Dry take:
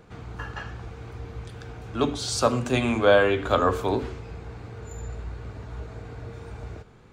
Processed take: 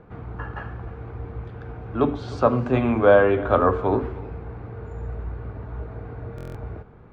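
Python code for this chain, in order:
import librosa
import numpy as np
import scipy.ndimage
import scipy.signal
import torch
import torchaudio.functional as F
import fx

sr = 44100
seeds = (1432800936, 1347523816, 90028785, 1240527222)

p1 = scipy.signal.sosfilt(scipy.signal.butter(2, 1500.0, 'lowpass', fs=sr, output='sos'), x)
p2 = p1 + fx.echo_single(p1, sr, ms=306, db=-19.5, dry=0)
p3 = fx.buffer_glitch(p2, sr, at_s=(6.36,), block=1024, repeats=7)
y = p3 * 10.0 ** (3.5 / 20.0)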